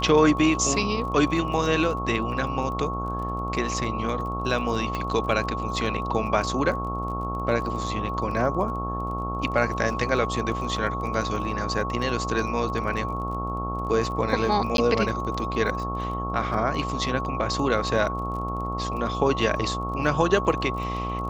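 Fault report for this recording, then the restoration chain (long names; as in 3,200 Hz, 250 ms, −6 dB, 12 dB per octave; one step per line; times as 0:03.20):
mains buzz 60 Hz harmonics 22 −31 dBFS
surface crackle 22 per second −34 dBFS
whistle 1,100 Hz −30 dBFS
0:04.95: click −16 dBFS
0:14.77–0:14.78: drop-out 12 ms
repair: click removal
hum removal 60 Hz, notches 22
notch filter 1,100 Hz, Q 30
repair the gap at 0:14.77, 12 ms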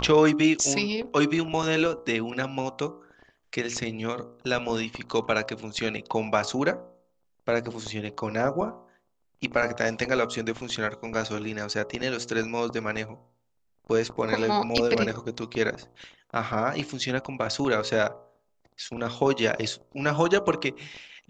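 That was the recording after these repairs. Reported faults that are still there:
none of them is left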